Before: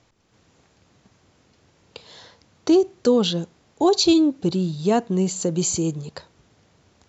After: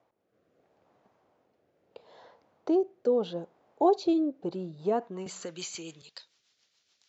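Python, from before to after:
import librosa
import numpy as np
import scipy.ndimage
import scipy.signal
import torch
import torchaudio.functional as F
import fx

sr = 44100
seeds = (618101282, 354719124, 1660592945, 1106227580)

y = fx.rotary_switch(x, sr, hz=0.75, then_hz=7.0, switch_at_s=4.25)
y = fx.filter_sweep_bandpass(y, sr, from_hz=680.0, to_hz=4400.0, start_s=4.81, end_s=6.25, q=1.4)
y = fx.band_squash(y, sr, depth_pct=70, at=(5.26, 6.02))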